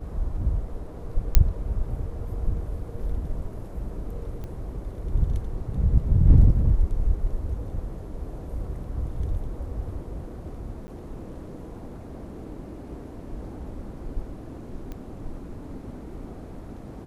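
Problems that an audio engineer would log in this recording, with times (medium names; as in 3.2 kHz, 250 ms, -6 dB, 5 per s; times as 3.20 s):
1.35 s: pop -3 dBFS
4.44 s: pop -25 dBFS
10.87–10.88 s: dropout 10 ms
14.92 s: pop -24 dBFS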